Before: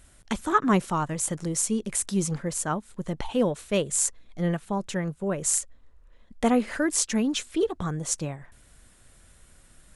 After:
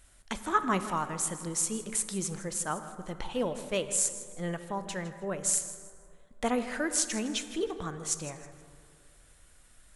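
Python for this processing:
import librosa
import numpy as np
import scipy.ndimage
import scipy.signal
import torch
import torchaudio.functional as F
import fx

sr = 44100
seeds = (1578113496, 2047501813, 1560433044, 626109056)

p1 = fx.peak_eq(x, sr, hz=170.0, db=-7.5, octaves=2.8)
p2 = p1 + fx.echo_feedback(p1, sr, ms=159, feedback_pct=28, wet_db=-15.5, dry=0)
p3 = fx.rev_plate(p2, sr, seeds[0], rt60_s=2.4, hf_ratio=0.4, predelay_ms=0, drr_db=10.5)
y = p3 * librosa.db_to_amplitude(-3.0)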